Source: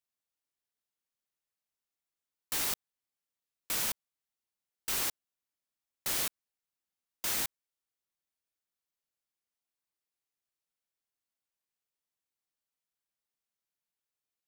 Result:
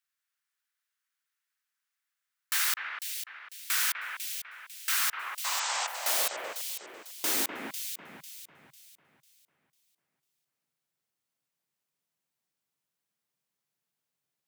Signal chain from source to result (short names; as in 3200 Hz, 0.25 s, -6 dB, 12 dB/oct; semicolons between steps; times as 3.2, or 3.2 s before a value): painted sound noise, 5.44–5.87, 490–8400 Hz -37 dBFS; echo with dull and thin repeats by turns 0.249 s, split 2500 Hz, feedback 59%, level -3.5 dB; high-pass sweep 1500 Hz -> 140 Hz, 4.91–8.49; gain +3.5 dB